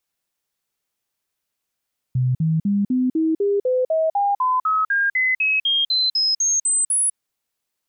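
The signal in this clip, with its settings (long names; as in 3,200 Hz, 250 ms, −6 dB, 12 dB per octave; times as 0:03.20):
stepped sweep 127 Hz up, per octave 3, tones 20, 0.20 s, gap 0.05 s −16 dBFS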